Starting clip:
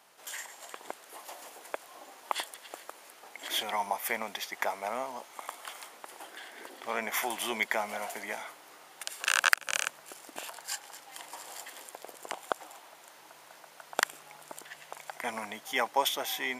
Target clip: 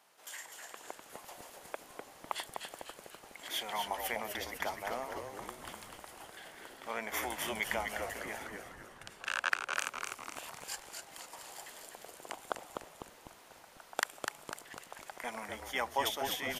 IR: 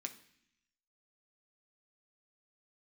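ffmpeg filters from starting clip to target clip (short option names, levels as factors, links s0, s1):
-filter_complex "[0:a]asettb=1/sr,asplit=3[s0][s1][s2];[s0]atrim=end=8.474[s3];[s1]atrim=start=8.47:end=9.77,asetpts=PTS-STARTPTS,afade=t=in:d=0.004:c=qsin,afade=t=out:st=1.296:d=0.004:c=qsin,lowpass=f=2100:p=1[s4];[s2]atrim=start=9.766[s5];[s3][s4]acrossfade=d=0.004:c1=hsin:c2=qsin[s6];[s6][s5]acrossfade=d=0.004:c1=qsin:c2=hsin,asplit=7[s7][s8][s9][s10][s11][s12][s13];[s8]adelay=250,afreqshift=-150,volume=0.562[s14];[s9]adelay=500,afreqshift=-300,volume=0.288[s15];[s10]adelay=750,afreqshift=-450,volume=0.146[s16];[s11]adelay=1000,afreqshift=-600,volume=0.075[s17];[s12]adelay=1250,afreqshift=-750,volume=0.038[s18];[s13]adelay=1500,afreqshift=-900,volume=0.0195[s19];[s7][s14][s15][s16][s17][s18][s19]amix=inputs=7:normalize=0,volume=0.531"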